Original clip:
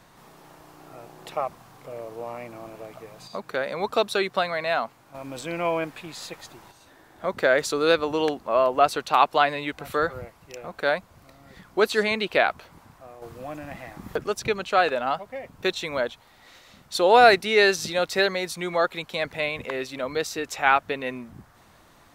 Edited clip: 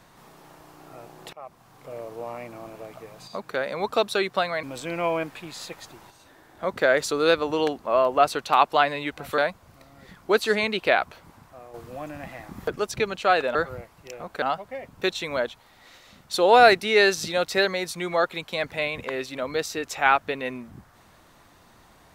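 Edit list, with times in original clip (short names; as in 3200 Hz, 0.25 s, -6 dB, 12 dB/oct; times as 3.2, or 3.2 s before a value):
1.33–1.94 fade in, from -23 dB
4.63–5.24 cut
9.99–10.86 move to 15.03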